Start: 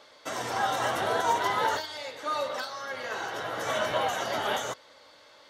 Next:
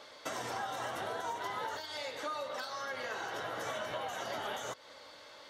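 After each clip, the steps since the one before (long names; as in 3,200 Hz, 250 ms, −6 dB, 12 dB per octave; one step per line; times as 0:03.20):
downward compressor 6 to 1, threshold −38 dBFS, peak gain reduction 16 dB
level +1.5 dB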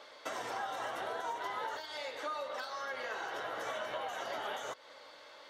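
bass and treble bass −10 dB, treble −5 dB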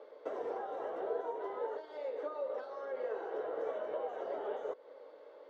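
resonant band-pass 440 Hz, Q 4.1
level +11 dB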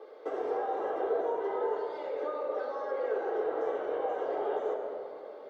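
convolution reverb RT60 2.7 s, pre-delay 3 ms, DRR 1.5 dB
level +1.5 dB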